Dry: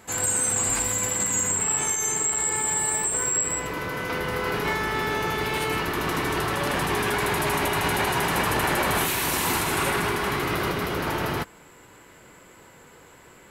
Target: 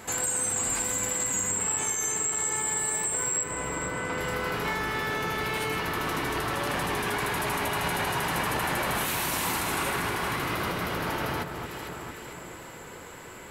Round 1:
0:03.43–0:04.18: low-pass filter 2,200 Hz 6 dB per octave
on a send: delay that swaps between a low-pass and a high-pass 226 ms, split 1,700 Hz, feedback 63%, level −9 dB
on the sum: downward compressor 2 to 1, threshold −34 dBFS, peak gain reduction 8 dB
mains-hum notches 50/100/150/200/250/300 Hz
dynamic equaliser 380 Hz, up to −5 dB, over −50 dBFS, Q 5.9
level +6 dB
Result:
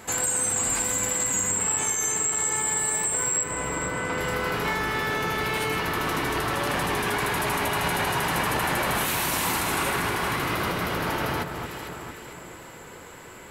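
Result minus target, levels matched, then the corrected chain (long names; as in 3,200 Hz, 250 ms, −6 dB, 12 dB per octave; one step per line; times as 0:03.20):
downward compressor: peak gain reduction −3 dB
0:03.43–0:04.18: low-pass filter 2,200 Hz 6 dB per octave
on a send: delay that swaps between a low-pass and a high-pass 226 ms, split 1,700 Hz, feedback 63%, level −9 dB
on the sum: downward compressor 2 to 1, threshold −40 dBFS, peak gain reduction 11 dB
mains-hum notches 50/100/150/200/250/300 Hz
dynamic equaliser 380 Hz, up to −5 dB, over −50 dBFS, Q 5.9
level +6 dB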